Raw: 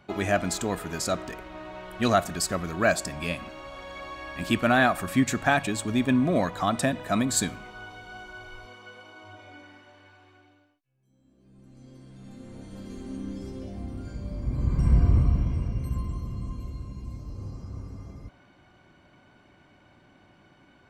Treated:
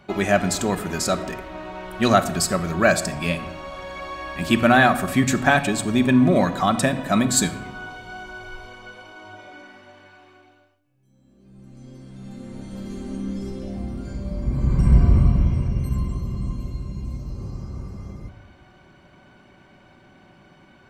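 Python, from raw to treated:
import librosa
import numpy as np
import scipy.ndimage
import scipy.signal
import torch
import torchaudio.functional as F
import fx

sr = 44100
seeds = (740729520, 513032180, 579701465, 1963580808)

y = fx.room_shoebox(x, sr, seeds[0], volume_m3=3600.0, walls='furnished', distance_m=1.1)
y = y * librosa.db_to_amplitude(5.0)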